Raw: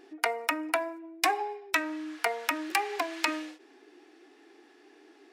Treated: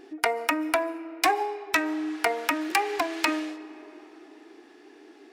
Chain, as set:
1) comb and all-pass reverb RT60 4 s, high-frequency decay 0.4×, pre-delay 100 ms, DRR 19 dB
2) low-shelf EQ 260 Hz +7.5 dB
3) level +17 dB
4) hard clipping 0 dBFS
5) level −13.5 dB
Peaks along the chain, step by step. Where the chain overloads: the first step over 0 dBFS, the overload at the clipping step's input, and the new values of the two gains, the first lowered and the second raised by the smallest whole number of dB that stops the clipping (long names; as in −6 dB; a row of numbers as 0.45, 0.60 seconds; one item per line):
−10.0, −10.0, +7.0, 0.0, −13.5 dBFS
step 3, 7.0 dB
step 3 +10 dB, step 5 −6.5 dB